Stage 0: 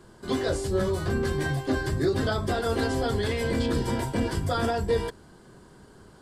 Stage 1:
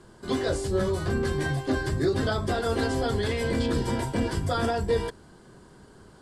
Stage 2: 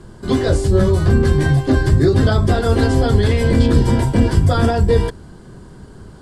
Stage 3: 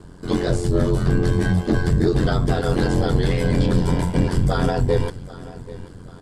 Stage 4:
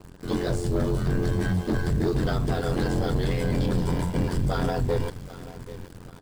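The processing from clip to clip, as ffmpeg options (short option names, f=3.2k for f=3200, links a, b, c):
-af "lowpass=f=12k:w=0.5412,lowpass=f=12k:w=1.3066"
-af "lowshelf=f=220:g=11.5,volume=6.5dB"
-af "aecho=1:1:786|1572|2358:0.119|0.0487|0.02,aeval=exprs='val(0)*sin(2*PI*44*n/s)':c=same,acontrast=27,volume=-6dB"
-filter_complex "[0:a]asplit=2[a][b];[b]acrusher=bits=5:mix=0:aa=0.000001,volume=-3.5dB[c];[a][c]amix=inputs=2:normalize=0,asoftclip=type=tanh:threshold=-8dB,volume=-8.5dB"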